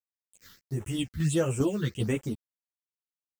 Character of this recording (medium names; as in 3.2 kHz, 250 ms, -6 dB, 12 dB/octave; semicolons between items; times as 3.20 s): a quantiser's noise floor 8-bit, dither none; phasing stages 6, 1.5 Hz, lowest notch 670–4400 Hz; tremolo saw down 2.5 Hz, depth 50%; a shimmering, thickened sound